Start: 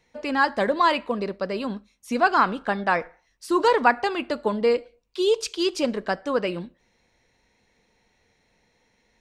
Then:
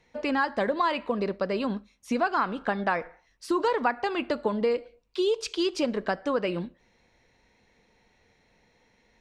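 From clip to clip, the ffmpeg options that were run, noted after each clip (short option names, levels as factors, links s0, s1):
-af "highshelf=f=7900:g=-12,acompressor=threshold=0.0501:ratio=3,volume=1.26"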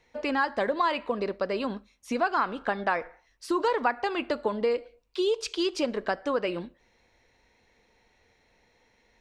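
-af "equalizer=f=170:t=o:w=1:g=-6.5"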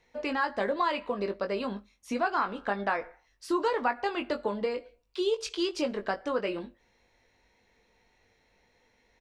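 -filter_complex "[0:a]asplit=2[s0][s1];[s1]adelay=20,volume=0.447[s2];[s0][s2]amix=inputs=2:normalize=0,volume=0.708"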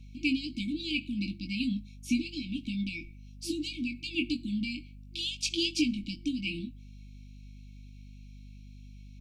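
-af "afftfilt=real='re*(1-between(b*sr/4096,340,2200))':imag='im*(1-between(b*sr/4096,340,2200))':win_size=4096:overlap=0.75,aeval=exprs='val(0)+0.00224*(sin(2*PI*50*n/s)+sin(2*PI*2*50*n/s)/2+sin(2*PI*3*50*n/s)/3+sin(2*PI*4*50*n/s)/4+sin(2*PI*5*50*n/s)/5)':c=same,volume=2"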